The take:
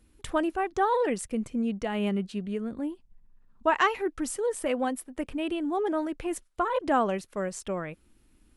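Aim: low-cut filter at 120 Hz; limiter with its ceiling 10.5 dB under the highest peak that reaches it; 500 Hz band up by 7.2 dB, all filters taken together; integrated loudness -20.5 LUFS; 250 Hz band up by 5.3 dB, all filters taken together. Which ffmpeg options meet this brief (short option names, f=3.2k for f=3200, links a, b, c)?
-af "highpass=120,equalizer=f=250:t=o:g=4.5,equalizer=f=500:t=o:g=7.5,volume=6.5dB,alimiter=limit=-11.5dB:level=0:latency=1"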